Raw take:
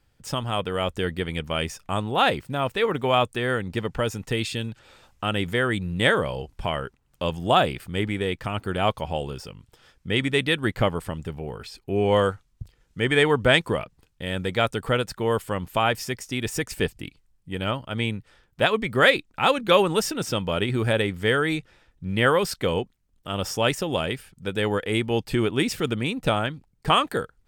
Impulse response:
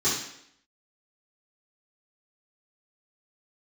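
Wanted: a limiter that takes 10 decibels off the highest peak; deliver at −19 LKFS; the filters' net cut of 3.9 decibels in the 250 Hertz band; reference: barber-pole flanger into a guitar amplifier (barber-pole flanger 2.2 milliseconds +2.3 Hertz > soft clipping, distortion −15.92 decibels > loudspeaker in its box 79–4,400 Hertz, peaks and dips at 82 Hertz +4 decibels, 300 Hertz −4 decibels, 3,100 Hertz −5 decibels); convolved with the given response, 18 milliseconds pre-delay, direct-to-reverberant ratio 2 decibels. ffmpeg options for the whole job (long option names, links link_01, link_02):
-filter_complex "[0:a]equalizer=frequency=250:width_type=o:gain=-3.5,alimiter=limit=-14dB:level=0:latency=1,asplit=2[link_01][link_02];[1:a]atrim=start_sample=2205,adelay=18[link_03];[link_02][link_03]afir=irnorm=-1:irlink=0,volume=-14.5dB[link_04];[link_01][link_04]amix=inputs=2:normalize=0,asplit=2[link_05][link_06];[link_06]adelay=2.2,afreqshift=2.3[link_07];[link_05][link_07]amix=inputs=2:normalize=1,asoftclip=threshold=-19.5dB,highpass=79,equalizer=frequency=82:width_type=q:width=4:gain=4,equalizer=frequency=300:width_type=q:width=4:gain=-4,equalizer=frequency=3100:width_type=q:width=4:gain=-5,lowpass=frequency=4400:width=0.5412,lowpass=frequency=4400:width=1.3066,volume=11.5dB"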